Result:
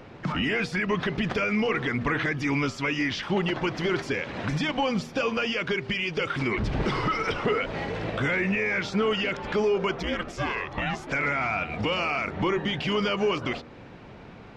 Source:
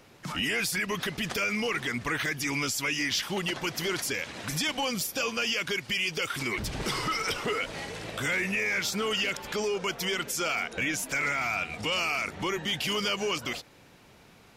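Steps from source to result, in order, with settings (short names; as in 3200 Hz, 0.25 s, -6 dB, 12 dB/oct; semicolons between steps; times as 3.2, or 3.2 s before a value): 10.02–11.06 ring modulator 120 Hz -> 620 Hz; de-hum 79.27 Hz, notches 17; in parallel at +2.5 dB: compressor, threshold -40 dBFS, peak gain reduction 14 dB; on the sum: tape spacing loss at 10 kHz 32 dB; gain +5.5 dB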